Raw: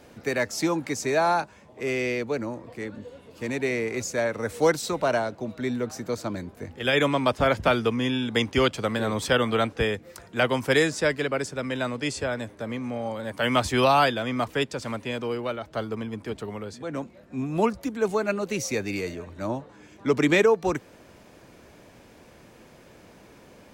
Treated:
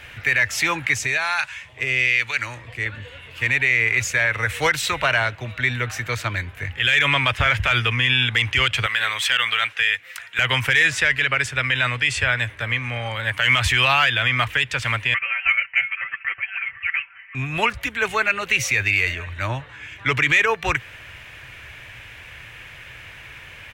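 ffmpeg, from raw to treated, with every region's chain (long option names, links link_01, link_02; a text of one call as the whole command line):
ffmpeg -i in.wav -filter_complex "[0:a]asettb=1/sr,asplit=3[link_01][link_02][link_03];[link_01]atrim=end=0.984[link_04];[link_02]atrim=start=0.98:end=2.86,asetpts=PTS-STARTPTS,afade=type=in:duration=0.004:curve=qsin,afade=type=out:start_time=1.876:duration=0.004:curve=qsin,acompressor=threshold=-26dB:ratio=12:attack=3.2:release=140:knee=1:detection=peak,equalizer=frequency=6800:width=0.36:gain=10,acrossover=split=800[link_05][link_06];[link_05]aeval=exprs='val(0)*(1-0.7/2+0.7/2*cos(2*PI*1.1*n/s))':channel_layout=same[link_07];[link_06]aeval=exprs='val(0)*(1-0.7/2-0.7/2*cos(2*PI*1.1*n/s))':channel_layout=same[link_08];[link_07][link_08]amix=inputs=2:normalize=0[link_09];[link_03]atrim=start=2.856[link_10];[link_04][link_09]acrossfade=duration=0.004:curve1=hsin:curve2=qsin[link_11];[link_11][link_10]acrossfade=duration=0.004:curve1=qsin:curve2=hsin,asettb=1/sr,asplit=3[link_12][link_13][link_14];[link_12]atrim=end=8.864[link_15];[link_13]atrim=start=8.86:end=10.39,asetpts=PTS-STARTPTS,afade=type=in:duration=0.004:curve=qsin,afade=type=out:start_time=1.526:duration=0.004:curve=qsin,highpass=frequency=1500:poles=1,acrusher=bits=8:mode=log:mix=0:aa=0.000001[link_16];[link_14]atrim=start=10.386[link_17];[link_15][link_16]acrossfade=duration=0.004:curve1=hsin:curve2=qsin[link_18];[link_18][link_17]acrossfade=duration=0.004:curve1=qsin:curve2=hsin,asettb=1/sr,asplit=3[link_19][link_20][link_21];[link_19]atrim=end=15.144[link_22];[link_20]atrim=start=15.14:end=17.35,asetpts=PTS-STARTPTS,afade=type=in:duration=0.004:curve=qsin,afade=type=out:start_time=2.206:duration=0.004:curve=qsin,highpass=frequency=1300:width=0.5412,highpass=frequency=1300:width=1.3066,aecho=1:1:4.9:0.9,atrim=end_sample=97461,lowpass=frequency=3100:width_type=q:width=0.5098,lowpass=frequency=3100:width_type=q:width=0.6013,lowpass=frequency=3100:width_type=q:width=0.9,lowpass=frequency=3100:width_type=q:width=2.563,afreqshift=-3600[link_23];[link_21]atrim=start=17.346[link_24];[link_22][link_23]acrossfade=duration=0.004:curve1=hsin:curve2=qsin[link_25];[link_25][link_24]acrossfade=duration=0.004:curve1=qsin:curve2=hsin,firequalizer=gain_entry='entry(120,0);entry(190,-20);entry(1800,8);entry(2800,9);entry(4600,-7);entry(13000,-5)':delay=0.05:min_phase=1,acontrast=66,alimiter=level_in=12.5dB:limit=-1dB:release=50:level=0:latency=1,volume=-7dB" out.wav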